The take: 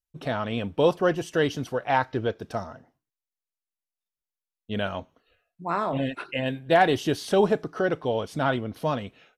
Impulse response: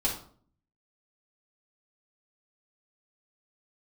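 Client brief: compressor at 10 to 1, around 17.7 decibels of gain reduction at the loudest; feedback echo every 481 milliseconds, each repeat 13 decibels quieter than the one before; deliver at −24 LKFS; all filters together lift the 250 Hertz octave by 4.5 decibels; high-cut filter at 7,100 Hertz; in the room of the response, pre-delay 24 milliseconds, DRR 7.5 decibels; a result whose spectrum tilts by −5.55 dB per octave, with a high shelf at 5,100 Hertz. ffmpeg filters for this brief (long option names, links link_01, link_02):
-filter_complex "[0:a]lowpass=7100,equalizer=frequency=250:width_type=o:gain=6,highshelf=frequency=5100:gain=-6,acompressor=threshold=-32dB:ratio=10,aecho=1:1:481|962|1443:0.224|0.0493|0.0108,asplit=2[link_01][link_02];[1:a]atrim=start_sample=2205,adelay=24[link_03];[link_02][link_03]afir=irnorm=-1:irlink=0,volume=-15dB[link_04];[link_01][link_04]amix=inputs=2:normalize=0,volume=12.5dB"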